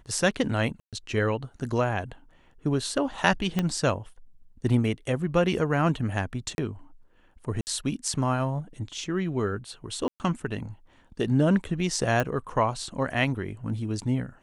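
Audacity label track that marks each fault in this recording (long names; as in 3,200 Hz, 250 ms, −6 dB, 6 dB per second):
0.800000	0.930000	drop-out 127 ms
3.590000	3.590000	click −12 dBFS
6.550000	6.580000	drop-out 31 ms
7.610000	7.670000	drop-out 59 ms
10.080000	10.200000	drop-out 119 ms
12.200000	12.200000	click −13 dBFS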